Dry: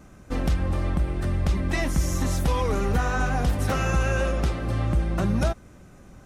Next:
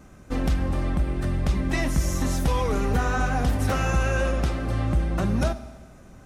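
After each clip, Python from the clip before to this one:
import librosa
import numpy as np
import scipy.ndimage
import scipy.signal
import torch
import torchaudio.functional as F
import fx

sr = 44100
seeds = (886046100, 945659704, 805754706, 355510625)

y = fx.rev_fdn(x, sr, rt60_s=1.4, lf_ratio=0.85, hf_ratio=0.9, size_ms=23.0, drr_db=11.5)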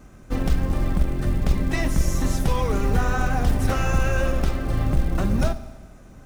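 y = fx.octave_divider(x, sr, octaves=2, level_db=1.0)
y = fx.quant_float(y, sr, bits=4)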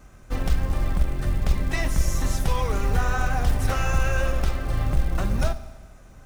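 y = fx.peak_eq(x, sr, hz=250.0, db=-7.5, octaves=1.8)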